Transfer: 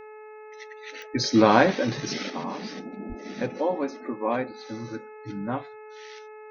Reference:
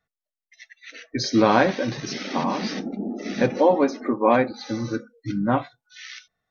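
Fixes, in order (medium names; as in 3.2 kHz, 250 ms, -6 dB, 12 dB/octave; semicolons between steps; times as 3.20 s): de-click; de-hum 429.1 Hz, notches 6; 3.08–3.20 s: high-pass 140 Hz 24 dB/octave; trim 0 dB, from 2.30 s +8.5 dB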